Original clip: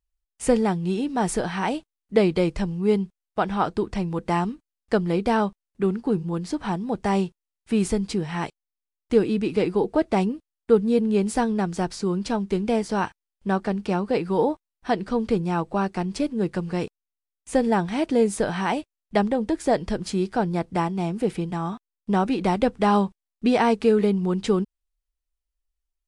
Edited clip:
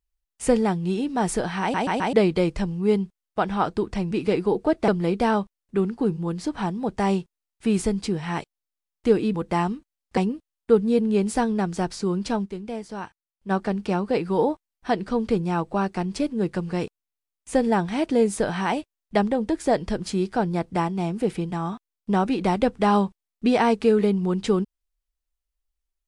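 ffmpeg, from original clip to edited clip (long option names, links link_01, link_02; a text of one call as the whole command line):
ffmpeg -i in.wav -filter_complex "[0:a]asplit=11[link_01][link_02][link_03][link_04][link_05][link_06][link_07][link_08][link_09][link_10][link_11];[link_01]atrim=end=1.742[link_12];[link_02]atrim=start=1.608:end=1.742[link_13];[link_03]atrim=start=1.608:end=1.742[link_14];[link_04]atrim=start=1.608:end=1.742[link_15];[link_05]atrim=start=2.128:end=4.112[link_16];[link_06]atrim=start=9.398:end=10.172[link_17];[link_07]atrim=start=4.938:end=9.402[link_18];[link_08]atrim=start=4.108:end=4.942[link_19];[link_09]atrim=start=10.168:end=12.57,asetpts=PTS-STARTPTS,afade=type=out:start_time=2.282:duration=0.12:curve=exp:silence=0.334965[link_20];[link_10]atrim=start=12.57:end=13.39,asetpts=PTS-STARTPTS,volume=-9.5dB[link_21];[link_11]atrim=start=13.39,asetpts=PTS-STARTPTS,afade=type=in:duration=0.12:curve=exp:silence=0.334965[link_22];[link_12][link_13]acrossfade=duration=0.004:curve1=hsin:curve2=hsin[link_23];[link_23][link_14]acrossfade=duration=0.004:curve1=hsin:curve2=hsin[link_24];[link_24][link_15]acrossfade=duration=0.004:curve1=hsin:curve2=hsin[link_25];[link_25][link_16]acrossfade=duration=0.004:curve1=hsin:curve2=hsin[link_26];[link_26][link_17]acrossfade=duration=0.004:curve1=hsin:curve2=hsin[link_27];[link_27][link_18]acrossfade=duration=0.004:curve1=hsin:curve2=hsin[link_28];[link_28][link_19]acrossfade=duration=0.004:curve1=hsin:curve2=hsin[link_29];[link_20][link_21][link_22]concat=n=3:v=0:a=1[link_30];[link_29][link_30]acrossfade=duration=0.004:curve1=hsin:curve2=hsin" out.wav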